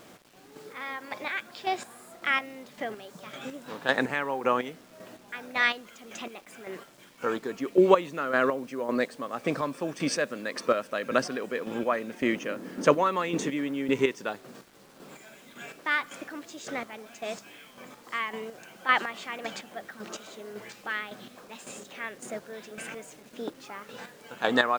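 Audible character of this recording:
chopped level 1.8 Hz, depth 60%, duty 30%
a quantiser's noise floor 10 bits, dither none

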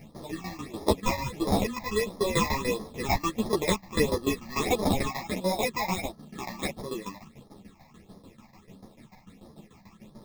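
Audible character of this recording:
aliases and images of a low sample rate 1,500 Hz, jitter 0%
phaser sweep stages 8, 1.5 Hz, lowest notch 400–2,600 Hz
tremolo saw down 6.8 Hz, depth 85%
a shimmering, thickened sound

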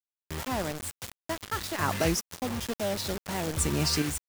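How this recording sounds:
chopped level 0.56 Hz, depth 60%, duty 25%
a quantiser's noise floor 6 bits, dither none

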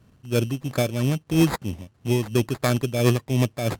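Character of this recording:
aliases and images of a low sample rate 2,900 Hz, jitter 0%
tremolo triangle 3 Hz, depth 70%
a quantiser's noise floor 12 bits, dither none
SBC

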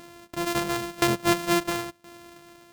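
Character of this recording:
a buzz of ramps at a fixed pitch in blocks of 128 samples
tremolo saw down 0.98 Hz, depth 90%

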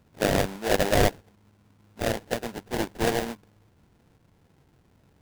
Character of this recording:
aliases and images of a low sample rate 1,200 Hz, jitter 20%

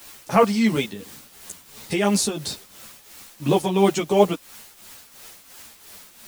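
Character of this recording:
a quantiser's noise floor 8 bits, dither triangular
tremolo triangle 2.9 Hz, depth 70%
a shimmering, thickened sound

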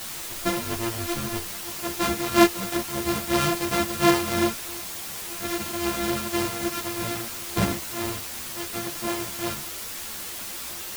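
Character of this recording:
a buzz of ramps at a fixed pitch in blocks of 128 samples
tremolo triangle 3 Hz, depth 60%
a quantiser's noise floor 6 bits, dither triangular
a shimmering, thickened sound

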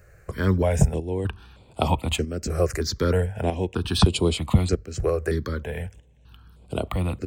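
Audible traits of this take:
chopped level 0.8 Hz, depth 60%, duty 80%
notches that jump at a steady rate 3.2 Hz 920–6,000 Hz

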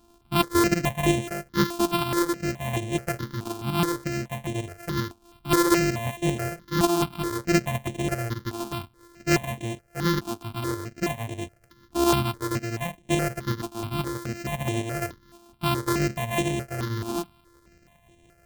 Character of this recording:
a buzz of ramps at a fixed pitch in blocks of 128 samples
tremolo saw up 5.4 Hz, depth 45%
notches that jump at a steady rate 4.7 Hz 520–4,800 Hz

